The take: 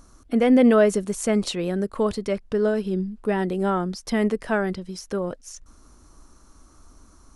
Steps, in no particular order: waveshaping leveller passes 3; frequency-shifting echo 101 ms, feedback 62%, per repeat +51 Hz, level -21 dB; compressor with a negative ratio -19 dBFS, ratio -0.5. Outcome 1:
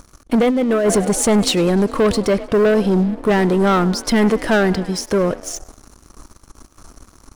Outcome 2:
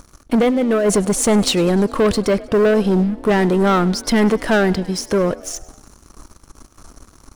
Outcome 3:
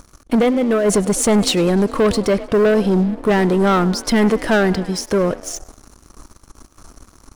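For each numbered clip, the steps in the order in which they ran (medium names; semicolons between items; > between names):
frequency-shifting echo > compressor with a negative ratio > waveshaping leveller; compressor with a negative ratio > waveshaping leveller > frequency-shifting echo; compressor with a negative ratio > frequency-shifting echo > waveshaping leveller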